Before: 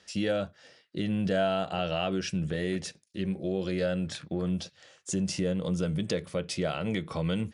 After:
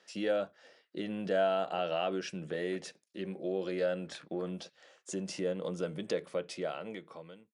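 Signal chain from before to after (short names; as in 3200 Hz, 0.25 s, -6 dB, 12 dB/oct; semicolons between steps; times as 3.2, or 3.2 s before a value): ending faded out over 1.25 s; HPF 340 Hz 12 dB/oct; high shelf 2200 Hz -9 dB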